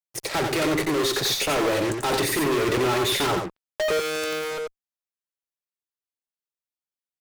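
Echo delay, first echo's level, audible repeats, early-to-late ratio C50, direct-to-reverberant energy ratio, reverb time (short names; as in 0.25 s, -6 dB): 89 ms, -5.0 dB, 1, none, none, none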